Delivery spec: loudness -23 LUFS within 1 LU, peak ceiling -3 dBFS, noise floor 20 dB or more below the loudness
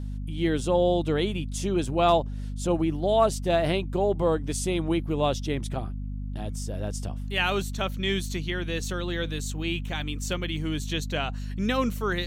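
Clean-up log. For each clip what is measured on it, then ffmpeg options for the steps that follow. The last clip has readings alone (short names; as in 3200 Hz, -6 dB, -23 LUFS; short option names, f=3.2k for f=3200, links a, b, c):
hum 50 Hz; harmonics up to 250 Hz; hum level -30 dBFS; loudness -27.5 LUFS; peak -9.5 dBFS; loudness target -23.0 LUFS
-> -af "bandreject=f=50:t=h:w=4,bandreject=f=100:t=h:w=4,bandreject=f=150:t=h:w=4,bandreject=f=200:t=h:w=4,bandreject=f=250:t=h:w=4"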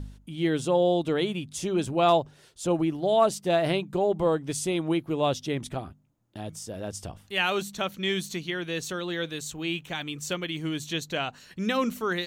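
hum none; loudness -28.0 LUFS; peak -10.5 dBFS; loudness target -23.0 LUFS
-> -af "volume=5dB"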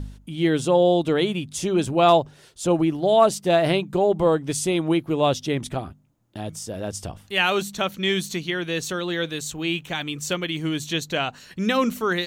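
loudness -23.0 LUFS; peak -5.5 dBFS; noise floor -52 dBFS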